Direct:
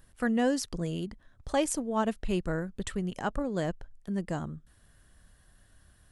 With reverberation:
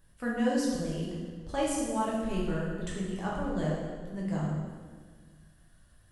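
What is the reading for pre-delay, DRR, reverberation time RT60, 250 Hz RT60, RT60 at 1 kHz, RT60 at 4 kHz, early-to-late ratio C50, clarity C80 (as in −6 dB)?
6 ms, −5.5 dB, 1.6 s, 2.1 s, 1.5 s, 1.3 s, 0.0 dB, 2.5 dB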